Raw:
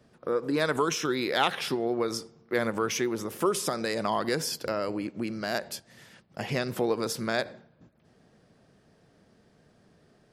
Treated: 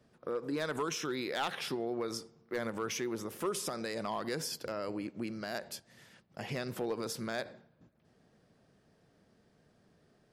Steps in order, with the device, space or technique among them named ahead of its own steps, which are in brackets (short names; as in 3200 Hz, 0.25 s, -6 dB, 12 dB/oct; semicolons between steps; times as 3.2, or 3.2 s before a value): clipper into limiter (hard clip -18 dBFS, distortion -21 dB; limiter -20.5 dBFS, peak gain reduction 2.5 dB); gain -6 dB